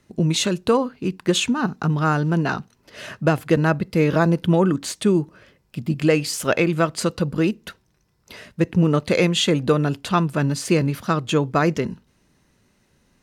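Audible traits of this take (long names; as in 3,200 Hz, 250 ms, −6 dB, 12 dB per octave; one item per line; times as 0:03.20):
background noise floor −64 dBFS
spectral slope −5.5 dB per octave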